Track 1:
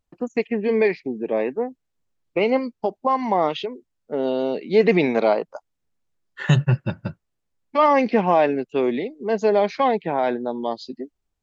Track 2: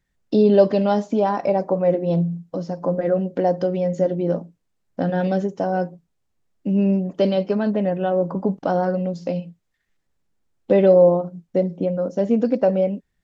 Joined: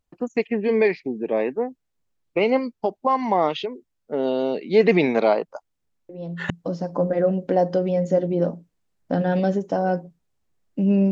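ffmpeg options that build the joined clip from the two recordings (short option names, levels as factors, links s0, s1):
-filter_complex "[1:a]asplit=2[s0][s1];[0:a]apad=whole_dur=11.11,atrim=end=11.11,atrim=end=6.502[s2];[s1]atrim=start=2.378:end=6.99[s3];[s0]atrim=start=1.97:end=2.38,asetpts=PTS-STARTPTS,volume=0.237,afade=t=in:d=0.004:c=hsin,afade=t=out:st=0.406:d=0.004:c=hsin,adelay=6090[s4];[s2][s3]acrossfade=d=0.004:c1=hsin:c2=hsin[s5];[s5][s4]amix=inputs=2:normalize=0"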